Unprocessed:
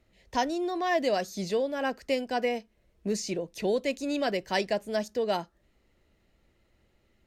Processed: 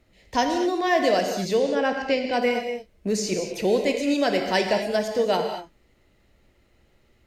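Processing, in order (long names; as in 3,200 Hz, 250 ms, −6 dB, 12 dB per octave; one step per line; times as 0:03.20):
0:01.44–0:02.32: low-pass filter 9,900 Hz → 4,800 Hz 24 dB per octave
reverb whose tail is shaped and stops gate 260 ms flat, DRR 3.5 dB
level +5 dB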